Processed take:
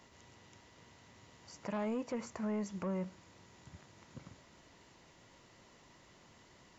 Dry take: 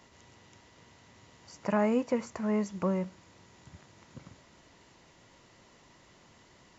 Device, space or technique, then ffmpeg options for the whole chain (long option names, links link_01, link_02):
soft clipper into limiter: -af "asoftclip=type=tanh:threshold=-22.5dB,alimiter=level_in=5dB:limit=-24dB:level=0:latency=1:release=93,volume=-5dB,volume=-2.5dB"